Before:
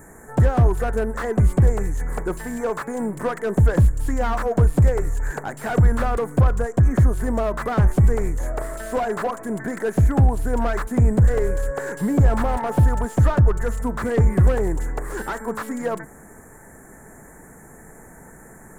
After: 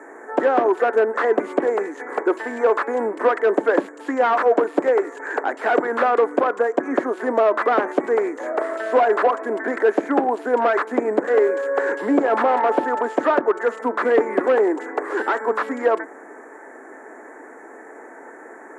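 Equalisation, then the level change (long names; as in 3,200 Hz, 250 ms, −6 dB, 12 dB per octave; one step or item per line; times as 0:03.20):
Butterworth high-pass 280 Hz 48 dB per octave
low-pass filter 2,900 Hz 12 dB per octave
+7.5 dB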